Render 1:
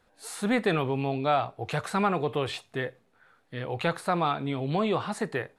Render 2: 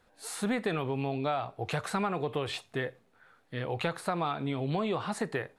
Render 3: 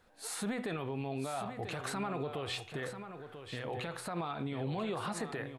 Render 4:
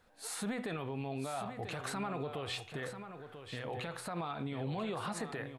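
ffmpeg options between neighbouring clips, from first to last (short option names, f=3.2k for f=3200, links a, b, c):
-af "acompressor=threshold=-27dB:ratio=5"
-af "bandreject=f=124.1:t=h:w=4,bandreject=f=248.2:t=h:w=4,bandreject=f=372.3:t=h:w=4,bandreject=f=496.4:t=h:w=4,bandreject=f=620.5:t=h:w=4,bandreject=f=744.6:t=h:w=4,bandreject=f=868.7:t=h:w=4,bandreject=f=992.8:t=h:w=4,bandreject=f=1.1169k:t=h:w=4,bandreject=f=1.241k:t=h:w=4,bandreject=f=1.3651k:t=h:w=4,bandreject=f=1.4892k:t=h:w=4,bandreject=f=1.6133k:t=h:w=4,bandreject=f=1.7374k:t=h:w=4,bandreject=f=1.8615k:t=h:w=4,bandreject=f=1.9856k:t=h:w=4,bandreject=f=2.1097k:t=h:w=4,bandreject=f=2.2338k:t=h:w=4,bandreject=f=2.3579k:t=h:w=4,bandreject=f=2.482k:t=h:w=4,bandreject=f=2.6061k:t=h:w=4,bandreject=f=2.7302k:t=h:w=4,bandreject=f=2.8543k:t=h:w=4,bandreject=f=2.9784k:t=h:w=4,bandreject=f=3.1025k:t=h:w=4,bandreject=f=3.2266k:t=h:w=4,bandreject=f=3.3507k:t=h:w=4,bandreject=f=3.4748k:t=h:w=4,bandreject=f=3.5989k:t=h:w=4,alimiter=level_in=4dB:limit=-24dB:level=0:latency=1:release=71,volume=-4dB,aecho=1:1:990:0.335"
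-af "equalizer=f=360:t=o:w=0.37:g=-2.5,volume=-1dB"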